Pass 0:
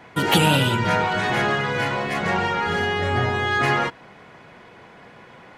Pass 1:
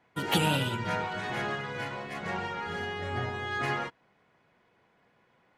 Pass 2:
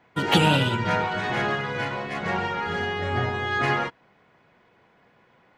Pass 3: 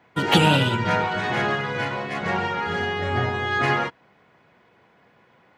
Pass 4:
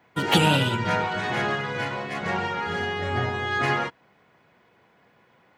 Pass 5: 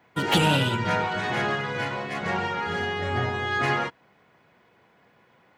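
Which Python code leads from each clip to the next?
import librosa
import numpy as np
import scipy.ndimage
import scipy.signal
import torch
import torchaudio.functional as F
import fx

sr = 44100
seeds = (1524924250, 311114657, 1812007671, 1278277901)

y1 = fx.upward_expand(x, sr, threshold_db=-41.0, expansion=1.5)
y1 = y1 * librosa.db_to_amplitude(-8.0)
y2 = fx.peak_eq(y1, sr, hz=12000.0, db=-12.5, octaves=0.89)
y2 = y2 * librosa.db_to_amplitude(7.5)
y3 = scipy.signal.sosfilt(scipy.signal.butter(2, 50.0, 'highpass', fs=sr, output='sos'), y2)
y3 = y3 * librosa.db_to_amplitude(2.0)
y4 = fx.high_shelf(y3, sr, hz=7900.0, db=7.0)
y4 = y4 * librosa.db_to_amplitude(-2.5)
y5 = 10.0 ** (-11.5 / 20.0) * np.tanh(y4 / 10.0 ** (-11.5 / 20.0))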